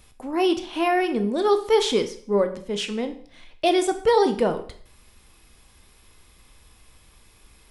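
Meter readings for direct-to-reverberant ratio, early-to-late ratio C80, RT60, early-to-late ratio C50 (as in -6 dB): 8.0 dB, 16.0 dB, 0.50 s, 12.5 dB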